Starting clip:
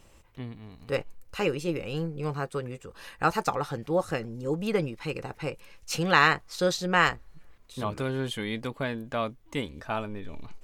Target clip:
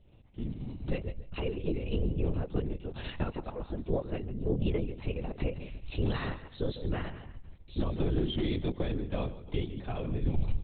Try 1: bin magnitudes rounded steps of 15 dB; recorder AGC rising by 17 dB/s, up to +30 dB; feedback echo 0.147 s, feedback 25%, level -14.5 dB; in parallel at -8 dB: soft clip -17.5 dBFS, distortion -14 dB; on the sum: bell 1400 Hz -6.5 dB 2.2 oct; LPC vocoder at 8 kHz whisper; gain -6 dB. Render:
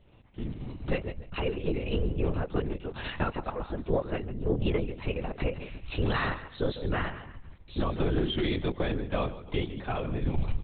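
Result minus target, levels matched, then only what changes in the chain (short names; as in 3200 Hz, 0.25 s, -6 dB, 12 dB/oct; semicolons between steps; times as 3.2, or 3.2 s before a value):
1000 Hz band +5.5 dB
change: bell 1400 Hz -17 dB 2.2 oct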